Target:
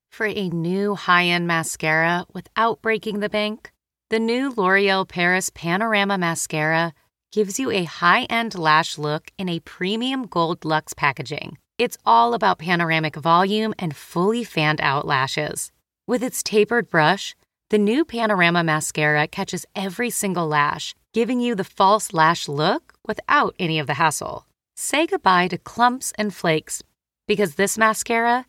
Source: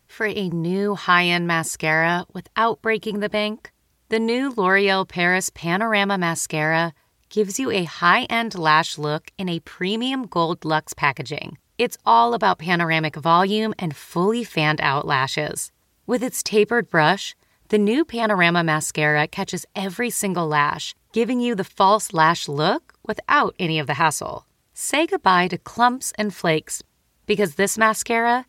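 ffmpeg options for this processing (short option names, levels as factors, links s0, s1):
-af "agate=range=0.0562:threshold=0.00447:ratio=16:detection=peak"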